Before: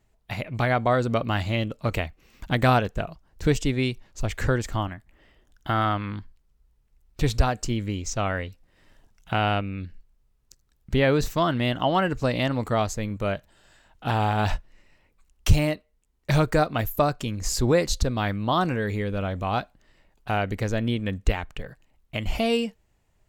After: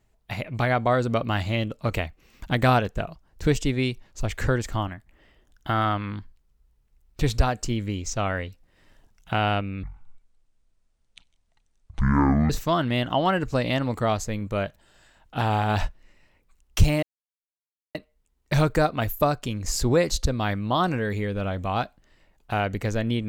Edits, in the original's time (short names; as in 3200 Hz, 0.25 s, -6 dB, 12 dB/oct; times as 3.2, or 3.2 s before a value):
9.83–11.19 speed 51%
15.72 insert silence 0.92 s